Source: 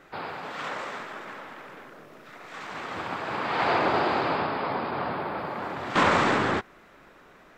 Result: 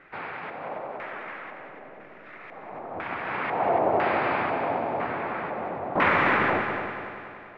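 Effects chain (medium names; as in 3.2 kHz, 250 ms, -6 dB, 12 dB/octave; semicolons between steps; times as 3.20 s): LFO low-pass square 1 Hz 710–2200 Hz; multi-head delay 95 ms, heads second and third, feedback 55%, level -9 dB; trim -3 dB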